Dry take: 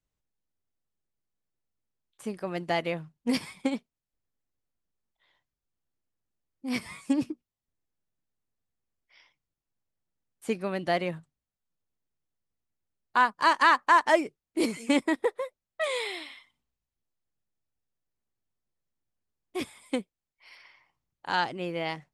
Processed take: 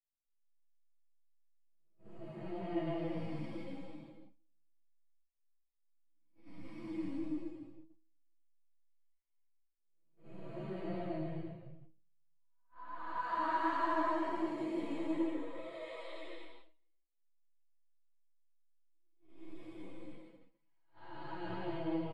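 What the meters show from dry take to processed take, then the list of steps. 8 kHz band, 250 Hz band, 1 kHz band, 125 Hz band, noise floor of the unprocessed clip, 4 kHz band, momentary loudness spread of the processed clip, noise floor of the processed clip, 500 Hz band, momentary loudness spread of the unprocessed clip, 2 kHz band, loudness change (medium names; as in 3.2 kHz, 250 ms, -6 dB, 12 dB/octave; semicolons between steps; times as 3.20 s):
under -25 dB, -7.5 dB, -11.5 dB, -4.0 dB, under -85 dBFS, -19.5 dB, 20 LU, -77 dBFS, -11.0 dB, 18 LU, -17.5 dB, -11.5 dB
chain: spectral blur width 614 ms; low-pass 1 kHz 6 dB/octave; resonant low shelf 140 Hz +7.5 dB, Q 3; comb 6 ms, depth 94%; simulated room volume 2400 m³, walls furnished, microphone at 2.8 m; gate -46 dBFS, range -24 dB; feedback comb 160 Hz, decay 0.25 s, harmonics all, mix 70%; delay 155 ms -3 dB; wow and flutter 15 cents; three-phase chorus; trim +1 dB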